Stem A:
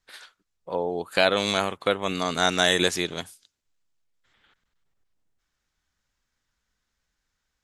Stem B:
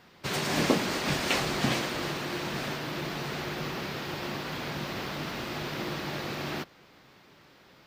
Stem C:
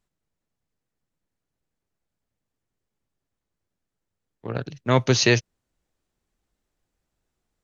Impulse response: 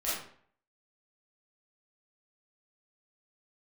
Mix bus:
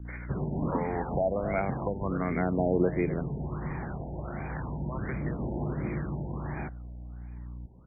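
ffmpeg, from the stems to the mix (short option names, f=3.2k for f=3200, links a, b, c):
-filter_complex "[0:a]equalizer=f=2.1k:t=o:w=0.31:g=10.5,aeval=exprs='val(0)+0.00501*(sin(2*PI*60*n/s)+sin(2*PI*2*60*n/s)/2+sin(2*PI*3*60*n/s)/3+sin(2*PI*4*60*n/s)/4+sin(2*PI*5*60*n/s)/5)':c=same,volume=2dB,asplit=2[a][b];[b]volume=-15dB[c];[1:a]lowshelf=f=240:g=11,adelay=50,volume=-5dB[d];[2:a]highpass=790,acompressor=threshold=-26dB:ratio=2.5,volume=-7.5dB[e];[c]aecho=0:1:250:1[f];[a][d][e][f]amix=inputs=4:normalize=0,acrossover=split=270|830[g][h][i];[g]acompressor=threshold=-33dB:ratio=4[j];[h]acompressor=threshold=-30dB:ratio=4[k];[i]acompressor=threshold=-36dB:ratio=4[l];[j][k][l]amix=inputs=3:normalize=0,aphaser=in_gain=1:out_gain=1:delay=1.6:decay=0.45:speed=0.36:type=triangular,afftfilt=real='re*lt(b*sr/1024,930*pow(2500/930,0.5+0.5*sin(2*PI*1.4*pts/sr)))':imag='im*lt(b*sr/1024,930*pow(2500/930,0.5+0.5*sin(2*PI*1.4*pts/sr)))':win_size=1024:overlap=0.75"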